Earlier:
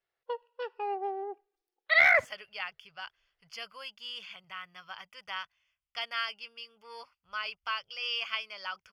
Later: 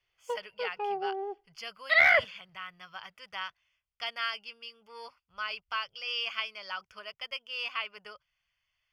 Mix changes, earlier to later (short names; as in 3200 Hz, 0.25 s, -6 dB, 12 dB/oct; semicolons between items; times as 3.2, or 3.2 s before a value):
speech: entry -1.95 s; master: add low shelf 410 Hz +3.5 dB